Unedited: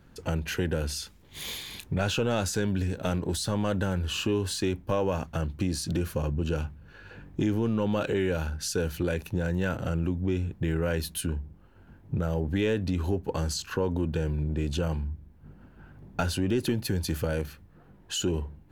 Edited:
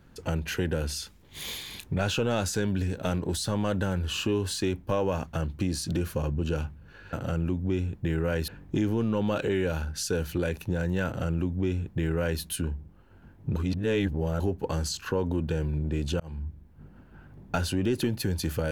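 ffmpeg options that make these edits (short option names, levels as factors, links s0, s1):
-filter_complex "[0:a]asplit=6[s0][s1][s2][s3][s4][s5];[s0]atrim=end=7.132[s6];[s1]atrim=start=9.708:end=11.062[s7];[s2]atrim=start=7.128:end=12.212[s8];[s3]atrim=start=12.208:end=13.052,asetpts=PTS-STARTPTS,areverse[s9];[s4]atrim=start=13.048:end=14.85,asetpts=PTS-STARTPTS,afade=t=out:st=1.798:d=0.004:c=hsin[s10];[s5]atrim=start=14.85,asetpts=PTS-STARTPTS,afade=t=in:d=0.27[s11];[s6][s7]acrossfade=d=0.004:c1=hsin:c2=hsin[s12];[s12][s8]acrossfade=d=0.004:c1=hsin:c2=hsin[s13];[s13][s9]acrossfade=d=0.004:c1=hsin:c2=hsin[s14];[s10][s11]concat=n=2:v=0:a=1[s15];[s14][s15]acrossfade=d=0.004:c1=hsin:c2=hsin"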